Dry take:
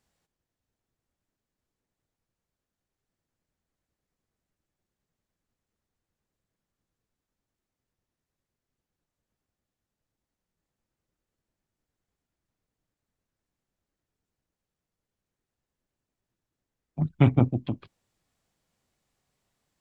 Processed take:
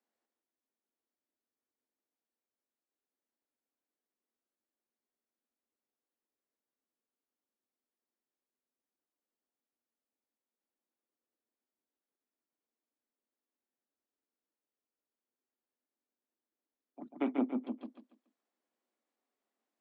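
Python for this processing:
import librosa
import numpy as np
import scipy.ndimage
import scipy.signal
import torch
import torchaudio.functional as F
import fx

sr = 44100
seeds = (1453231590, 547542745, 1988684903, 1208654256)

y = scipy.signal.sosfilt(scipy.signal.butter(12, 220.0, 'highpass', fs=sr, output='sos'), x)
y = fx.high_shelf(y, sr, hz=2900.0, db=-12.0)
y = fx.echo_feedback(y, sr, ms=142, feedback_pct=30, wet_db=-5)
y = F.gain(torch.from_numpy(y), -8.5).numpy()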